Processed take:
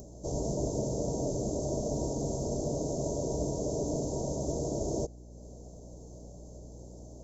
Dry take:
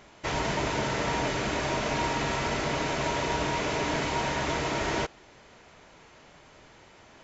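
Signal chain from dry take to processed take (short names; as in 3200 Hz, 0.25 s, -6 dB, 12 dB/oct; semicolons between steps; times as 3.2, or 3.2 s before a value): rattling part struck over -33 dBFS, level -32 dBFS; Chebyshev band-stop 600–6300 Hz, order 3; upward compressor, threshold -43 dBFS; hum 60 Hz, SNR 15 dB; short-mantissa float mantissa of 8-bit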